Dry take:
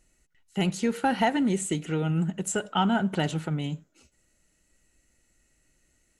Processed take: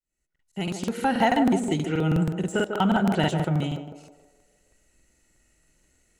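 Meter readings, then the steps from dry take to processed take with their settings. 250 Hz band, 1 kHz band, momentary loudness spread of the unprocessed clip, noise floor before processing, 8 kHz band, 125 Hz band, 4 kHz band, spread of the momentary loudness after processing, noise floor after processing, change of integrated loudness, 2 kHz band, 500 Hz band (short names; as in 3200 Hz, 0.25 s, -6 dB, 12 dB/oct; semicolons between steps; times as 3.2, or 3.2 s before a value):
+3.0 dB, +3.0 dB, 7 LU, -70 dBFS, -6.0 dB, +3.0 dB, +1.0 dB, 11 LU, -80 dBFS, +3.0 dB, +2.5 dB, +3.5 dB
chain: opening faded in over 1.25 s; de-esser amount 85%; narrowing echo 0.148 s, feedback 55%, band-pass 570 Hz, level -4.5 dB; crackling interface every 0.16 s, samples 2048, repeat, from 0.31; gain +2.5 dB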